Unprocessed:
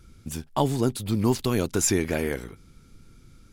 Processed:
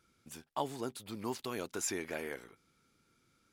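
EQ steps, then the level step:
high-pass filter 1,000 Hz 6 dB per octave
high-shelf EQ 2,300 Hz −8 dB
−5.0 dB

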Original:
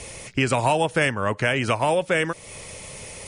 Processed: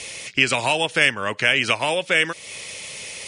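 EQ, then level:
meter weighting curve D
−2.0 dB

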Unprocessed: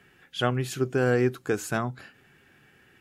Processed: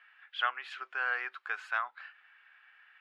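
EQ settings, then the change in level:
high-pass filter 1,100 Hz 24 dB per octave
low-pass filter 8,500 Hz
high-frequency loss of the air 430 metres
+4.5 dB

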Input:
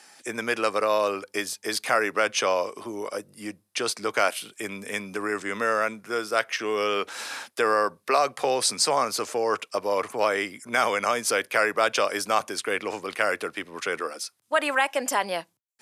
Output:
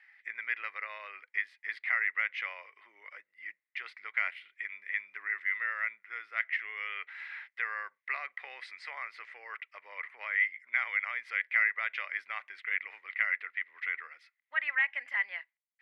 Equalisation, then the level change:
resonant band-pass 2,000 Hz, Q 13
high-frequency loss of the air 440 metres
spectral tilt +4.5 dB per octave
+7.0 dB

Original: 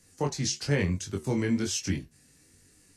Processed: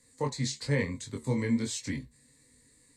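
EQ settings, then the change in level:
EQ curve with evenly spaced ripples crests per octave 1, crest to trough 12 dB
−4.5 dB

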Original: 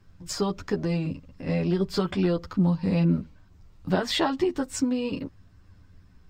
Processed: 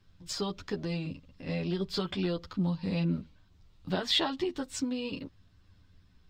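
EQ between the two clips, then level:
parametric band 3,600 Hz +10 dB 0.98 octaves
−7.5 dB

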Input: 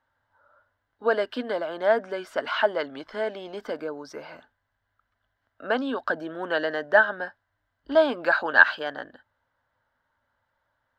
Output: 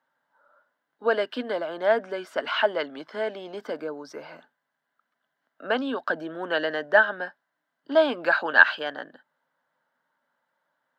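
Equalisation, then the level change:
elliptic high-pass filter 150 Hz
dynamic equaliser 2,700 Hz, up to +5 dB, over −42 dBFS, Q 1.7
0.0 dB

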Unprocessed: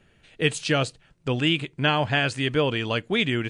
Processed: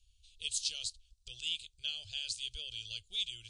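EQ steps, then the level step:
inverse Chebyshev band-stop filter 130–2,000 Hz, stop band 40 dB
low-pass filter 9,500 Hz
0.0 dB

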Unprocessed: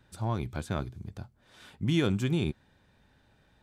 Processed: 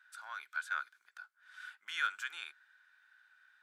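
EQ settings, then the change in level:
four-pole ladder high-pass 1,400 Hz, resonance 80%
+6.0 dB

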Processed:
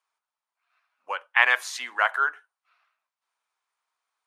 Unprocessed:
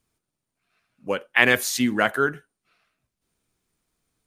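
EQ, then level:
four-pole ladder high-pass 800 Hz, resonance 45%
high-shelf EQ 4,200 Hz −7.5 dB
parametric band 14,000 Hz −12.5 dB 0.57 octaves
+7.0 dB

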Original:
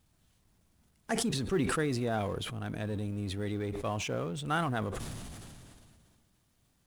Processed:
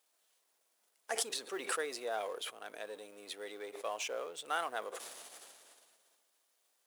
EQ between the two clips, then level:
Chebyshev high-pass filter 480 Hz, order 3
high-shelf EQ 6,000 Hz +4.5 dB
−3.0 dB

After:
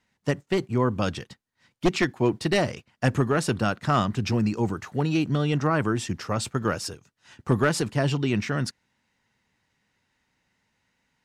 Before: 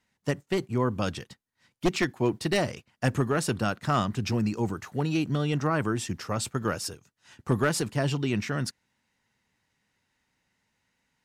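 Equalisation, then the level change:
high-shelf EQ 11,000 Hz −11.5 dB
+3.0 dB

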